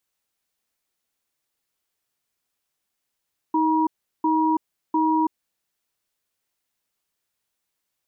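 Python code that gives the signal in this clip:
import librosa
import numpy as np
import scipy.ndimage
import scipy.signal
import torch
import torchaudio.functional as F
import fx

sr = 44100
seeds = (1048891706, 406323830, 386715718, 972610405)

y = fx.cadence(sr, length_s=1.74, low_hz=315.0, high_hz=957.0, on_s=0.33, off_s=0.37, level_db=-20.0)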